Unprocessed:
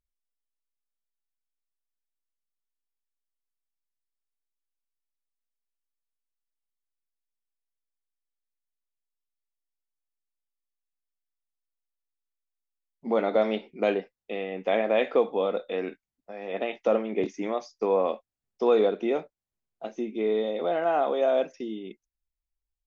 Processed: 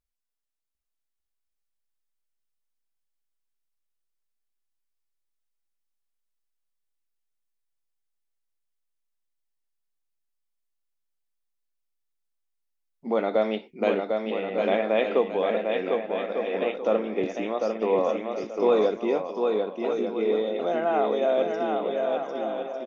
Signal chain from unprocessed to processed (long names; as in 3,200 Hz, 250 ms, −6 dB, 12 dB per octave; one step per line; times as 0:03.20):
bouncing-ball delay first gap 750 ms, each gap 0.6×, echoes 5